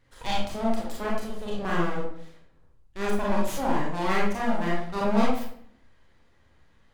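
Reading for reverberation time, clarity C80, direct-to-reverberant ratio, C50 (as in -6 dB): 0.65 s, 6.0 dB, -4.5 dB, 1.0 dB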